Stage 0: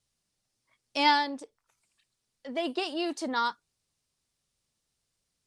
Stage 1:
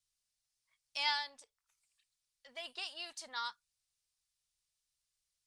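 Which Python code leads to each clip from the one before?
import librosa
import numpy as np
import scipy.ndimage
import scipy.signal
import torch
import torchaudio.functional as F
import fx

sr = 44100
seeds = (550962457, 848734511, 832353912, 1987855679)

y = fx.tone_stack(x, sr, knobs='10-0-10')
y = F.gain(torch.from_numpy(y), -4.0).numpy()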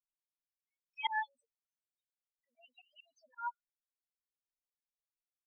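y = fx.spec_topn(x, sr, count=2)
y = fx.auto_swell(y, sr, attack_ms=113.0)
y = fx.upward_expand(y, sr, threshold_db=-60.0, expansion=2.5)
y = F.gain(torch.from_numpy(y), 13.5).numpy()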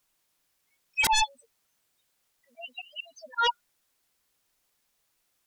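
y = fx.fold_sine(x, sr, drive_db=16, ceiling_db=-21.5)
y = F.gain(torch.from_numpy(y), 2.0).numpy()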